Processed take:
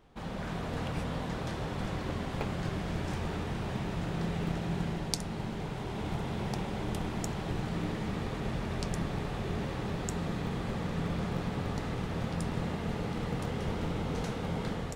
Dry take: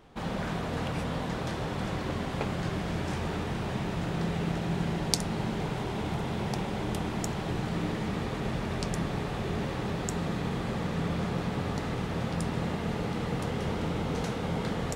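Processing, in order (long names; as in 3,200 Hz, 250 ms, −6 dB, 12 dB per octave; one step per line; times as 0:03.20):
low-shelf EQ 66 Hz +6 dB
in parallel at −9 dB: comparator with hysteresis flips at −21 dBFS
on the sum: automatic gain control gain up to 3 dB
level −6.5 dB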